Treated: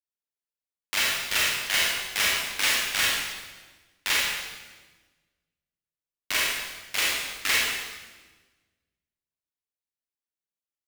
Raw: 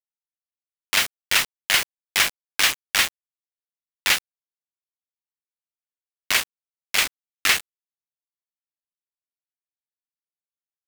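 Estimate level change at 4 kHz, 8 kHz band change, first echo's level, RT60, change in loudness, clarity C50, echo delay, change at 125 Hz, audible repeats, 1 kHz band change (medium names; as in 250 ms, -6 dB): -2.5 dB, -2.5 dB, no echo, 1.3 s, -3.0 dB, -1.5 dB, no echo, -1.5 dB, no echo, -3.0 dB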